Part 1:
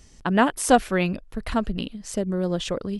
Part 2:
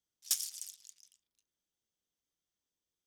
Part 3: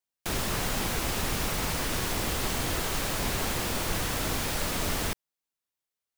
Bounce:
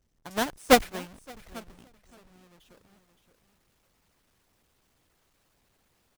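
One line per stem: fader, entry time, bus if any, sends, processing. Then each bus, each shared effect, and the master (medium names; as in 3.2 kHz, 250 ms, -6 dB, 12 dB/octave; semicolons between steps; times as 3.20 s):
1.51 s -8.5 dB -> 2.10 s -19 dB, 0.00 s, no send, echo send -10.5 dB, square wave that keeps the level; decay stretcher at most 110 dB/s
-10.0 dB, 0.00 s, no send, no echo send, none
-17.5 dB, 2.35 s, no send, no echo send, saturation -33 dBFS, distortion -8 dB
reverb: none
echo: feedback delay 570 ms, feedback 20%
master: harmonic-percussive split percussive +6 dB; upward expansion 2.5:1, over -25 dBFS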